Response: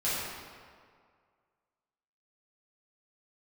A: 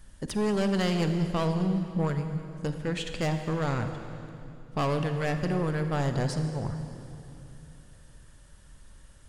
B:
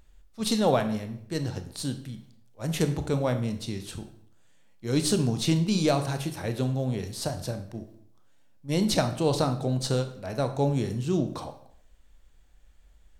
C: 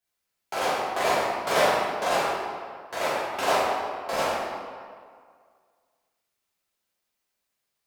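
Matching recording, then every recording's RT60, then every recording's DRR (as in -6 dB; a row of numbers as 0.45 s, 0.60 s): C; 2.8 s, 0.65 s, 2.0 s; 7.0 dB, 7.5 dB, -11.5 dB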